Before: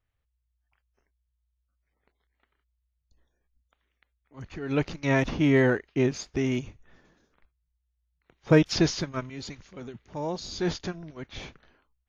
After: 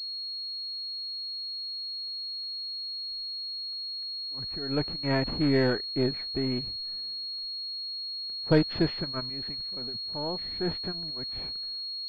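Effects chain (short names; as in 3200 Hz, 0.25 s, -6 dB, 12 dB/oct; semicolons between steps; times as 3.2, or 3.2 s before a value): half-wave gain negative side -3 dB; pulse-width modulation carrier 4300 Hz; gain -1.5 dB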